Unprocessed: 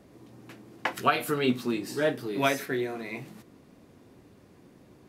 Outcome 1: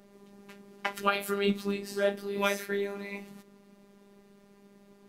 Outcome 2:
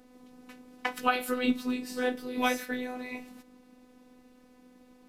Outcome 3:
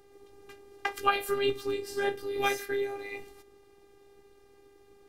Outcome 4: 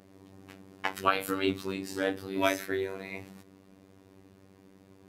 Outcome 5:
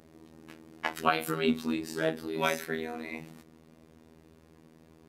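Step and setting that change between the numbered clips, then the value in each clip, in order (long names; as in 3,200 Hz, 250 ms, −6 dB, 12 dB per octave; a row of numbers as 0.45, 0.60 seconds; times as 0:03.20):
phases set to zero, frequency: 200, 250, 400, 96, 80 Hertz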